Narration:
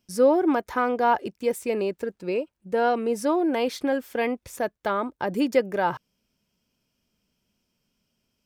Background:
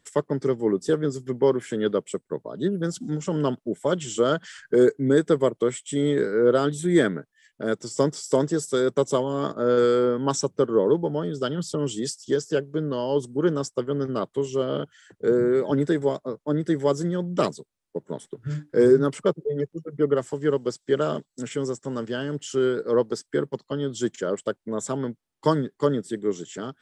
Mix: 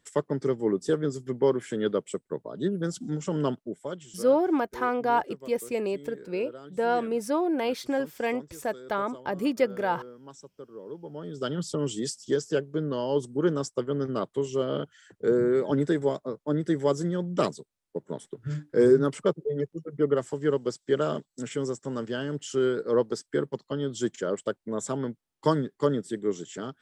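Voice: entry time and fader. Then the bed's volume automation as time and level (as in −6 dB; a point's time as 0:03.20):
4.05 s, −3.0 dB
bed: 0:03.52 −3 dB
0:04.38 −23 dB
0:10.80 −23 dB
0:11.51 −2.5 dB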